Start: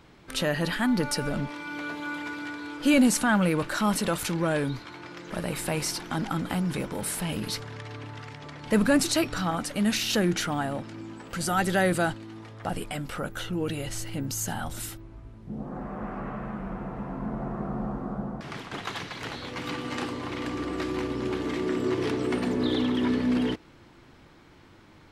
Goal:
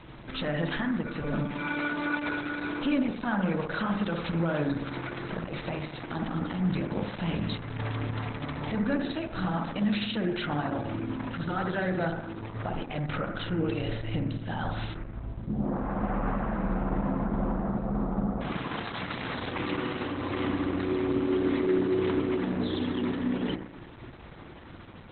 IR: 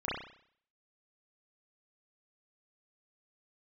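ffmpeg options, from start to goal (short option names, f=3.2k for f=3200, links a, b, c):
-filter_complex "[0:a]bandreject=f=410:w=12,asplit=2[a][b];[b]acompressor=threshold=-38dB:ratio=8,volume=0dB[c];[a][c]amix=inputs=2:normalize=0,alimiter=limit=-22dB:level=0:latency=1:release=337,asoftclip=type=hard:threshold=-23.5dB,asplit=2[d][e];[1:a]atrim=start_sample=2205,asetrate=25578,aresample=44100[f];[e][f]afir=irnorm=-1:irlink=0,volume=-11.5dB[g];[d][g]amix=inputs=2:normalize=0" -ar 48000 -c:a libopus -b:a 8k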